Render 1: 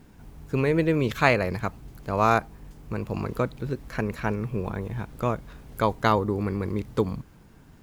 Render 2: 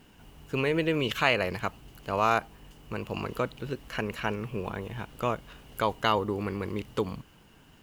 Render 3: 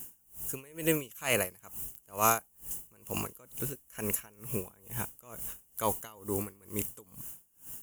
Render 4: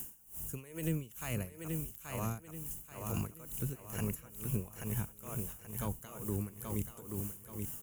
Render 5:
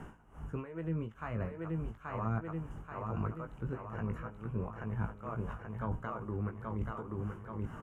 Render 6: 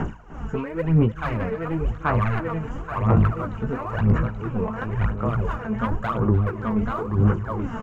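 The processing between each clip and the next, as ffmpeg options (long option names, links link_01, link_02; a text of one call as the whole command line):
ffmpeg -i in.wav -filter_complex "[0:a]equalizer=frequency=2900:width=7.7:gain=15,asplit=2[link_01][link_02];[link_02]alimiter=limit=-14.5dB:level=0:latency=1,volume=3dB[link_03];[link_01][link_03]amix=inputs=2:normalize=0,lowshelf=frequency=320:gain=-8,volume=-7.5dB" out.wav
ffmpeg -i in.wav -af "aexciter=amount=13.2:drive=8.9:freq=6600,asoftclip=type=tanh:threshold=-7.5dB,aeval=exprs='val(0)*pow(10,-29*(0.5-0.5*cos(2*PI*2.2*n/s))/20)':channel_layout=same" out.wav
ffmpeg -i in.wav -filter_complex "[0:a]acrossover=split=210[link_01][link_02];[link_02]acompressor=threshold=-46dB:ratio=8[link_03];[link_01][link_03]amix=inputs=2:normalize=0,asplit=2[link_04][link_05];[link_05]aecho=0:1:831|1662|2493|3324:0.596|0.203|0.0689|0.0234[link_06];[link_04][link_06]amix=inputs=2:normalize=0,volume=4.5dB" out.wav
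ffmpeg -i in.wav -filter_complex "[0:a]areverse,acompressor=threshold=-45dB:ratio=12,areverse,lowpass=frequency=1300:width_type=q:width=2,asplit=2[link_01][link_02];[link_02]adelay=18,volume=-6.5dB[link_03];[link_01][link_03]amix=inputs=2:normalize=0,volume=11.5dB" out.wav
ffmpeg -i in.wav -af "aresample=16000,aeval=exprs='0.0891*sin(PI/2*2.24*val(0)/0.0891)':channel_layout=same,aresample=44100,aphaser=in_gain=1:out_gain=1:delay=4.6:decay=0.65:speed=0.96:type=sinusoidal,aecho=1:1:300:0.15,volume=2.5dB" out.wav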